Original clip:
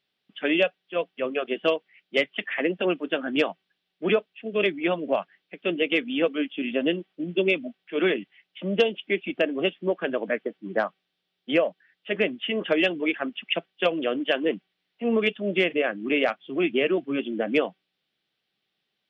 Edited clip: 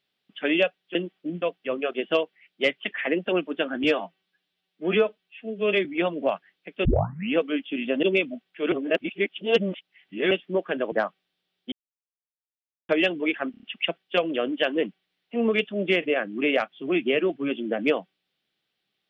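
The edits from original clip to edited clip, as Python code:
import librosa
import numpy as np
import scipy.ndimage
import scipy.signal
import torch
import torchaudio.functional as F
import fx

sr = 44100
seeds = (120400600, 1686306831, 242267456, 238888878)

y = fx.edit(x, sr, fx.stretch_span(start_s=3.37, length_s=1.34, factor=1.5),
    fx.tape_start(start_s=5.71, length_s=0.49),
    fx.move(start_s=6.89, length_s=0.47, to_s=0.95),
    fx.reverse_span(start_s=8.05, length_s=1.59),
    fx.cut(start_s=10.25, length_s=0.47),
    fx.silence(start_s=11.52, length_s=1.17),
    fx.stutter(start_s=13.31, slice_s=0.03, count=5), tone=tone)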